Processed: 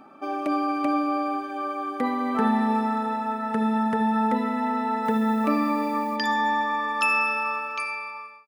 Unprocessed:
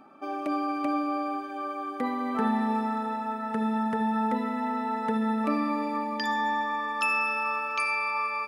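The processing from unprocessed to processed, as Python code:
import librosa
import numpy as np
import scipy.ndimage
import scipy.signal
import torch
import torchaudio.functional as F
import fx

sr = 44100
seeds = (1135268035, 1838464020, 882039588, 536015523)

y = fx.fade_out_tail(x, sr, length_s=1.28)
y = fx.dmg_noise_colour(y, sr, seeds[0], colour='blue', level_db=-59.0, at=(5.04, 6.15), fade=0.02)
y = F.gain(torch.from_numpy(y), 4.0).numpy()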